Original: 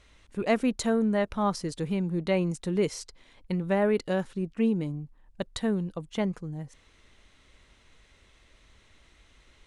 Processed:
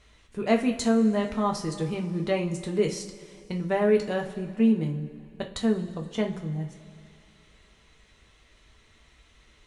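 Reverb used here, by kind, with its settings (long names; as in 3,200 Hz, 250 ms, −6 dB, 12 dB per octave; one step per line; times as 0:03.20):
coupled-rooms reverb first 0.29 s, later 2.6 s, from −18 dB, DRR 1.5 dB
level −1 dB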